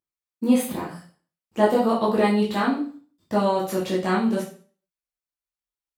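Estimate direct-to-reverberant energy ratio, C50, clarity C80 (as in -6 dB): -7.0 dB, 6.5 dB, 11.0 dB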